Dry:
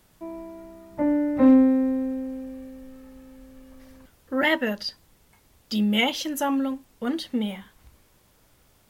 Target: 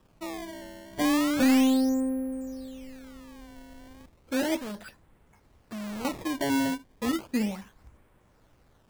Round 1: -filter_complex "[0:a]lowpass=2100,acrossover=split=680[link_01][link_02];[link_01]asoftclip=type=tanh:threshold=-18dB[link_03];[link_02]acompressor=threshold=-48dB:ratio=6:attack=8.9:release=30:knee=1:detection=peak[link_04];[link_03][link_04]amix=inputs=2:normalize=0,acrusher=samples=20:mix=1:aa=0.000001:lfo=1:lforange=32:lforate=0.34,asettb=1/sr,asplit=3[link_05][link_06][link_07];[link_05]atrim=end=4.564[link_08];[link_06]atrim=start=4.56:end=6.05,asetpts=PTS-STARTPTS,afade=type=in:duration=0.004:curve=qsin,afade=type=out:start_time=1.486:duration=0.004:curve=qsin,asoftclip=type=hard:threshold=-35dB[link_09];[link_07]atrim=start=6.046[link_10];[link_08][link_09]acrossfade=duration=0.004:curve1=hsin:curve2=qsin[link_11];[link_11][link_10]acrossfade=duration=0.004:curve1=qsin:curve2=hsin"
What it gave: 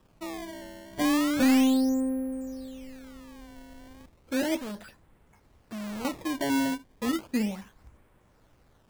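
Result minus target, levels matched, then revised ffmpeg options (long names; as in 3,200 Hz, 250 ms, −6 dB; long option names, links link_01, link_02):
downward compressor: peak gain reduction +5.5 dB
-filter_complex "[0:a]lowpass=2100,acrossover=split=680[link_01][link_02];[link_01]asoftclip=type=tanh:threshold=-18dB[link_03];[link_02]acompressor=threshold=-41.5dB:ratio=6:attack=8.9:release=30:knee=1:detection=peak[link_04];[link_03][link_04]amix=inputs=2:normalize=0,acrusher=samples=20:mix=1:aa=0.000001:lfo=1:lforange=32:lforate=0.34,asettb=1/sr,asplit=3[link_05][link_06][link_07];[link_05]atrim=end=4.564[link_08];[link_06]atrim=start=4.56:end=6.05,asetpts=PTS-STARTPTS,afade=type=in:duration=0.004:curve=qsin,afade=type=out:start_time=1.486:duration=0.004:curve=qsin,asoftclip=type=hard:threshold=-35dB[link_09];[link_07]atrim=start=6.046[link_10];[link_08][link_09]acrossfade=duration=0.004:curve1=hsin:curve2=qsin[link_11];[link_11][link_10]acrossfade=duration=0.004:curve1=qsin:curve2=hsin"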